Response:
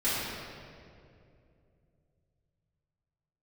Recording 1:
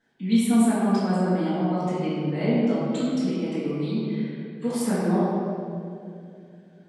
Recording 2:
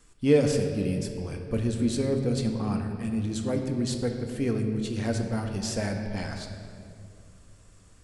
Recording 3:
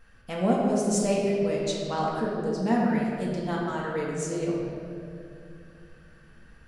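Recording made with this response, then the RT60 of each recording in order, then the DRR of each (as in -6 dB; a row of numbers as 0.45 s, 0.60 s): 1; 2.5 s, 2.7 s, 2.5 s; -13.5 dB, 3.5 dB, -4.0 dB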